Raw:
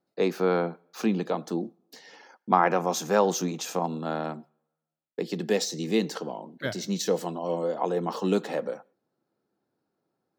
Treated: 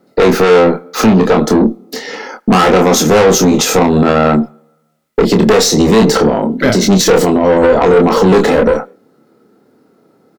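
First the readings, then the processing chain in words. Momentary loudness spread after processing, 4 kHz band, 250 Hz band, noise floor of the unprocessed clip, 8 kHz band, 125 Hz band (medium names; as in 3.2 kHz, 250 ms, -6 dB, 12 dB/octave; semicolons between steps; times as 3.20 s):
7 LU, +19.0 dB, +19.5 dB, -83 dBFS, +19.0 dB, +19.5 dB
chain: small resonant body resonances 240/440/1300/2000 Hz, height 9 dB, ringing for 25 ms; valve stage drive 23 dB, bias 0.4; doubling 27 ms -5 dB; loudness maximiser +24 dB; trim -1 dB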